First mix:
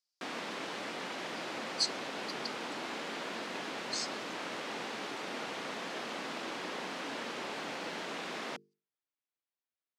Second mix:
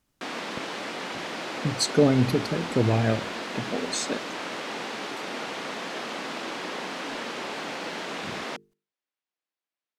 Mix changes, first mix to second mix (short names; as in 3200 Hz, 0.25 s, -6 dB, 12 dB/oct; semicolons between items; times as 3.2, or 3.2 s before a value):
speech: remove ladder band-pass 5200 Hz, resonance 70%; background +6.0 dB